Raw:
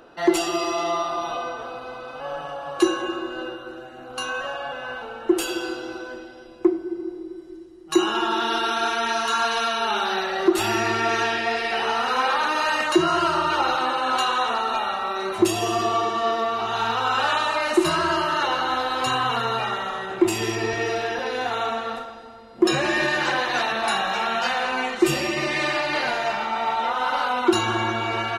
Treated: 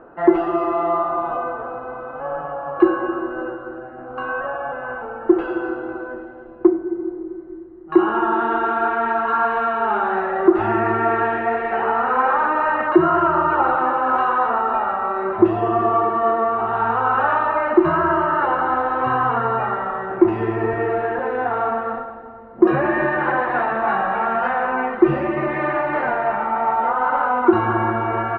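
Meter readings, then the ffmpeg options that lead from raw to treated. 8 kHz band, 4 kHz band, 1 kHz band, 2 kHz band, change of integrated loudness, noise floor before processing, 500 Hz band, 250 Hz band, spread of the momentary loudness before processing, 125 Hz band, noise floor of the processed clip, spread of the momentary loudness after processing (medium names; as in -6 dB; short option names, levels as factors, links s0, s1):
under -40 dB, under -15 dB, +4.5 dB, +0.5 dB, +3.5 dB, -41 dBFS, +5.0 dB, +5.0 dB, 12 LU, +5.0 dB, -36 dBFS, 12 LU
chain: -af "lowpass=f=1600:w=0.5412,lowpass=f=1600:w=1.3066,volume=1.78"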